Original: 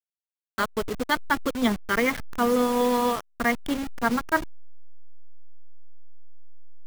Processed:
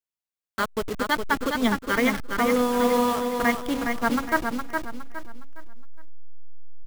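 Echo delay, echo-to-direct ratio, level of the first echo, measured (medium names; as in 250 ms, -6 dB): 413 ms, -4.5 dB, -5.0 dB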